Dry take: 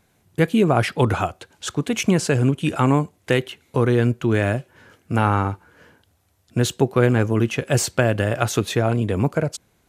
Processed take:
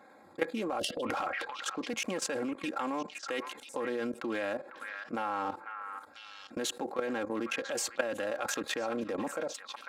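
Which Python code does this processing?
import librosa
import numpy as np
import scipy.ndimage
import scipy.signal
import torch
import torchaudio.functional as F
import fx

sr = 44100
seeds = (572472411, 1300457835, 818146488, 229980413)

p1 = fx.wiener(x, sr, points=15)
p2 = scipy.signal.sosfilt(scipy.signal.butter(2, 450.0, 'highpass', fs=sr, output='sos'), p1)
p3 = fx.high_shelf(p2, sr, hz=6600.0, db=-3.0)
p4 = p3 + 0.75 * np.pad(p3, (int(3.7 * sr / 1000.0), 0))[:len(p3)]
p5 = p4 + fx.echo_stepped(p4, sr, ms=498, hz=1600.0, octaves=1.4, feedback_pct=70, wet_db=-11, dry=0)
p6 = fx.spec_box(p5, sr, start_s=0.79, length_s=0.24, low_hz=730.0, high_hz=2700.0, gain_db=-28)
p7 = fx.level_steps(p6, sr, step_db=16)
p8 = fx.transient(p7, sr, attack_db=-1, sustain_db=12, at=(0.66, 1.68))
p9 = fx.env_flatten(p8, sr, amount_pct=50)
y = p9 * librosa.db_to_amplitude(-8.5)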